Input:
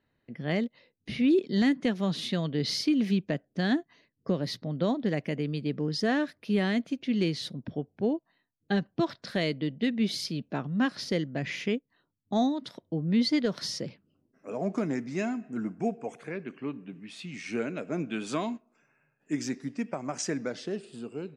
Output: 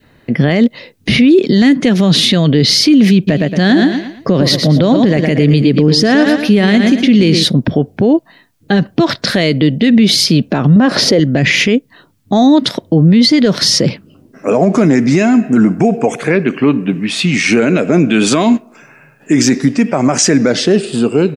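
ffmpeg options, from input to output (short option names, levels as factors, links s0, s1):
-filter_complex "[0:a]asplit=3[s0][s1][s2];[s0]afade=t=out:st=3.27:d=0.02[s3];[s1]aecho=1:1:114|228|342|456:0.316|0.108|0.0366|0.0124,afade=t=in:st=3.27:d=0.02,afade=t=out:st=7.43:d=0.02[s4];[s2]afade=t=in:st=7.43:d=0.02[s5];[s3][s4][s5]amix=inputs=3:normalize=0,asettb=1/sr,asplit=3[s6][s7][s8];[s6]atrim=end=10.764[s9];[s7]atrim=start=10.76:end=11.2,asetpts=PTS-STARTPTS,afade=t=in:d=0.004:c=qsin,afade=t=out:st=0.436:d=0.004:c=qsin,equalizer=f=560:t=o:w=2.5:g=13[s10];[s8]atrim=start=11.196[s11];[s9][s10]acrossfade=d=0.004:c1=hsin:c2=qsin[s12];[s12][s11]acrossfade=d=0.004:c1=qsin:c2=hsin,adynamicequalizer=threshold=0.00398:dfrequency=1000:dqfactor=1.3:tfrequency=1000:tqfactor=1.3:attack=5:release=100:ratio=0.375:range=2.5:mode=cutabove:tftype=bell,alimiter=level_in=26.6:limit=0.891:release=50:level=0:latency=1,volume=0.891"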